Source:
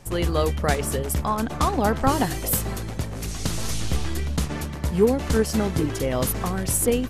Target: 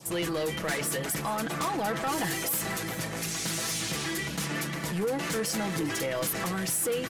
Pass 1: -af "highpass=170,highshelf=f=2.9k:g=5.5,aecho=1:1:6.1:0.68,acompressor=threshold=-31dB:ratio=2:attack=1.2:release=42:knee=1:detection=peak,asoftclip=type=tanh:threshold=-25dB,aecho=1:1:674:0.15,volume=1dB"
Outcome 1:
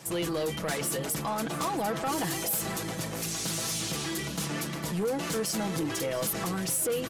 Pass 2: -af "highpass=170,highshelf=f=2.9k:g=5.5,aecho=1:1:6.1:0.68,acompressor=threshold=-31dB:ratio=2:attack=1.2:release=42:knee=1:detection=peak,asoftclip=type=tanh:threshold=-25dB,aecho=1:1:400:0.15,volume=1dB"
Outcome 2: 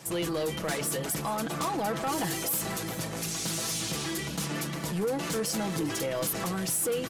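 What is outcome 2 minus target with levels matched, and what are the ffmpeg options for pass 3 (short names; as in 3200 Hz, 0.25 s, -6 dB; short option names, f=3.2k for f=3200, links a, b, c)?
2000 Hz band -3.5 dB
-af "highpass=170,highshelf=f=2.9k:g=5.5,aecho=1:1:6.1:0.68,acompressor=threshold=-31dB:ratio=2:attack=1.2:release=42:knee=1:detection=peak,adynamicequalizer=threshold=0.00316:dfrequency=1900:dqfactor=1.7:tfrequency=1900:tqfactor=1.7:attack=5:release=100:ratio=0.417:range=3:mode=boostabove:tftype=bell,asoftclip=type=tanh:threshold=-25dB,aecho=1:1:400:0.15,volume=1dB"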